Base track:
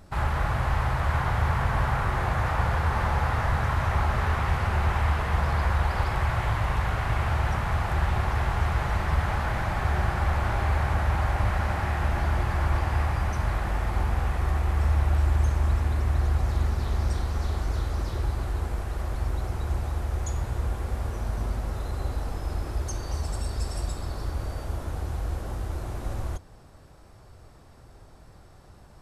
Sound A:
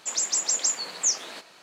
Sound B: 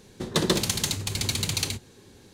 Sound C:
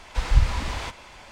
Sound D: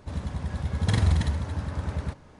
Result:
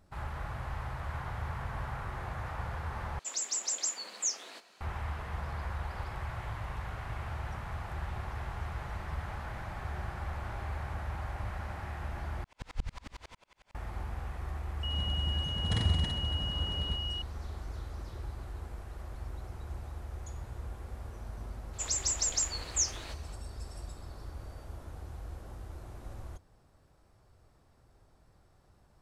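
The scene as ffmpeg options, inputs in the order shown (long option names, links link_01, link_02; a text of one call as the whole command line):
ffmpeg -i bed.wav -i cue0.wav -i cue1.wav -i cue2.wav -i cue3.wav -filter_complex "[1:a]asplit=2[link_01][link_02];[0:a]volume=-13dB[link_03];[link_01]afreqshift=30[link_04];[3:a]aeval=exprs='val(0)*pow(10,-37*if(lt(mod(-11*n/s,1),2*abs(-11)/1000),1-mod(-11*n/s,1)/(2*abs(-11)/1000),(mod(-11*n/s,1)-2*abs(-11)/1000)/(1-2*abs(-11)/1000))/20)':channel_layout=same[link_05];[4:a]aeval=exprs='val(0)+0.0398*sin(2*PI*2900*n/s)':channel_layout=same[link_06];[link_03]asplit=3[link_07][link_08][link_09];[link_07]atrim=end=3.194[link_10];[link_04]atrim=end=1.62,asetpts=PTS-STARTPTS,volume=-8.5dB[link_11];[link_08]atrim=start=4.806:end=12.444[link_12];[link_05]atrim=end=1.31,asetpts=PTS-STARTPTS,volume=-9dB[link_13];[link_09]atrim=start=13.746[link_14];[link_06]atrim=end=2.39,asetpts=PTS-STARTPTS,volume=-7.5dB,afade=type=in:duration=0.004:curve=hsin,afade=type=out:start_time=2.386:duration=0.004:curve=hsin,adelay=14830[link_15];[link_02]atrim=end=1.62,asetpts=PTS-STARTPTS,volume=-6dB,afade=type=in:duration=0.004:curve=hsin,afade=type=out:start_time=1.616:duration=0.004:curve=hsin,adelay=21730[link_16];[link_10][link_11]acrossfade=duration=0.004:curve1=hsin:curve2=hsin[link_17];[link_17][link_12]acrossfade=duration=0.004:curve1=hsin:curve2=hsin[link_18];[link_18][link_13]acrossfade=duration=0.004:curve1=hsin:curve2=hsin[link_19];[link_19][link_14]acrossfade=duration=0.004:curve1=hsin:curve2=hsin[link_20];[link_20][link_15][link_16]amix=inputs=3:normalize=0" out.wav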